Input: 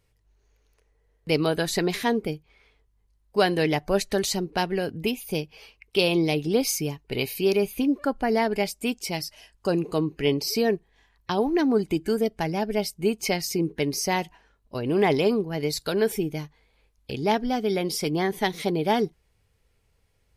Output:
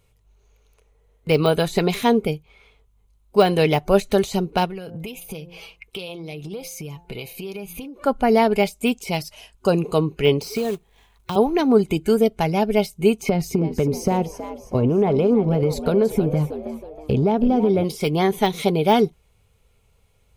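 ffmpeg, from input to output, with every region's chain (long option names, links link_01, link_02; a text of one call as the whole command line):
ffmpeg -i in.wav -filter_complex "[0:a]asettb=1/sr,asplit=3[link_01][link_02][link_03];[link_01]atrim=end=4.654[link_04];[link_02]atrim=start=4.65:end=8.05,asetpts=PTS-STARTPTS,afade=type=in:duration=0.004:curve=qsin,afade=type=out:start_time=3.396:duration=0.004:curve=qsin,aecho=1:1:6.1:0.42,atrim=end_sample=149940,bandreject=frequency=173.6:width_type=h:width=4,bandreject=frequency=347.2:width_type=h:width=4,bandreject=frequency=520.8:width_type=h:width=4,bandreject=frequency=694.4:width_type=h:width=4,bandreject=frequency=868:width_type=h:width=4,bandreject=frequency=1041.6:width_type=h:width=4,bandreject=frequency=1215.2:width_type=h:width=4,bandreject=frequency=1388.8:width_type=h:width=4,bandreject=frequency=1562.4:width_type=h:width=4,bandreject=frequency=1736:width_type=h:width=4,acompressor=threshold=-35dB:ratio=10:attack=3.2:release=140:knee=1:detection=peak[link_05];[link_03]atrim=start=8.046[link_06];[link_04][link_05]acrossfade=duration=0.004:curve1=hsin:curve2=qsin[link_07];[link_07][link_06]acrossfade=duration=0.004:curve1=qsin:curve2=hsin,asettb=1/sr,asplit=3[link_08][link_09][link_10];[link_08]atrim=end=10.414[link_11];[link_09]atrim=start=10.41:end=11.36,asetpts=PTS-STARTPTS,afade=type=in:duration=0.004:curve=qsin,afade=type=out:start_time=0.946:duration=0.004:curve=qsin,lowpass=frequency=12000:width=0.5412,lowpass=frequency=12000:width=1.3066,acrossover=split=400|2700[link_12][link_13][link_14];[link_12]acompressor=threshold=-34dB:ratio=4[link_15];[link_13]acompressor=threshold=-33dB:ratio=4[link_16];[link_14]acompressor=threshold=-36dB:ratio=4[link_17];[link_15][link_16][link_17]amix=inputs=3:normalize=0,acrusher=bits=3:mode=log:mix=0:aa=0.000001[link_18];[link_10]atrim=start=11.356[link_19];[link_11][link_18]acrossfade=duration=0.004:curve1=hsin:curve2=qsin[link_20];[link_20][link_19]acrossfade=duration=0.004:curve1=qsin:curve2=hsin,asettb=1/sr,asplit=3[link_21][link_22][link_23];[link_21]atrim=end=13.294[link_24];[link_22]atrim=start=13.29:end=17.84,asetpts=PTS-STARTPTS,afade=type=in:duration=0.004:curve=qsin,afade=type=out:start_time=4.546:duration=0.004:curve=qsin,tiltshelf=frequency=1200:gain=9.5,acompressor=threshold=-20dB:ratio=10:attack=3.2:release=140:knee=1:detection=peak,asplit=5[link_25][link_26][link_27][link_28][link_29];[link_26]adelay=321,afreqshift=79,volume=-12dB[link_30];[link_27]adelay=642,afreqshift=158,volume=-19.7dB[link_31];[link_28]adelay=963,afreqshift=237,volume=-27.5dB[link_32];[link_29]adelay=1284,afreqshift=316,volume=-35.2dB[link_33];[link_25][link_30][link_31][link_32][link_33]amix=inputs=5:normalize=0,atrim=end_sample=200655[link_34];[link_23]atrim=start=17.836[link_35];[link_24][link_34]acrossfade=duration=0.004:curve1=hsin:curve2=qsin[link_36];[link_36][link_35]acrossfade=duration=0.004:curve1=qsin:curve2=hsin,superequalizer=6b=0.501:11b=0.447:14b=0.562,deesser=0.8,volume=7dB" out.wav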